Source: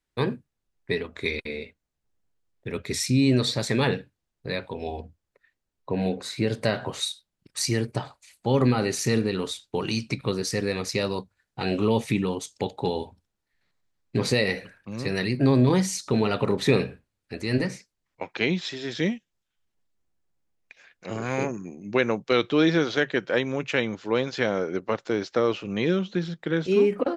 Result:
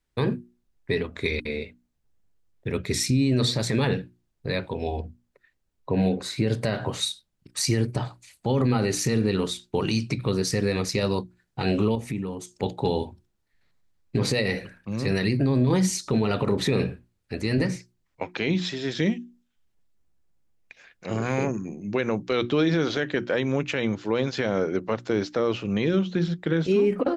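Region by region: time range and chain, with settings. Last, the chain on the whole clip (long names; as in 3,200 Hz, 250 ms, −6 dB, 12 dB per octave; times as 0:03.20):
0:11.95–0:12.63: downward compressor 2 to 1, threshold −38 dBFS + parametric band 3,700 Hz −7.5 dB 0.92 octaves
whole clip: low-shelf EQ 230 Hz +7 dB; mains-hum notches 60/120/180/240/300/360 Hz; brickwall limiter −15 dBFS; level +1.5 dB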